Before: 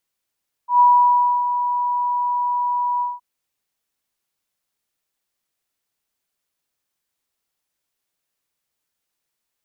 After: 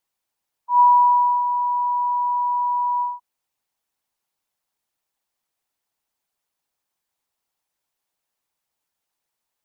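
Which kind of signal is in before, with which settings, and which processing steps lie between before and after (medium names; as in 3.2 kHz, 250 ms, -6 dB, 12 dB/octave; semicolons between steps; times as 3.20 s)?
ADSR sine 976 Hz, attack 119 ms, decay 634 ms, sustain -9.5 dB, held 2.33 s, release 189 ms -8.5 dBFS
peaking EQ 850 Hz +7.5 dB 0.7 oct; harmonic-percussive split harmonic -6 dB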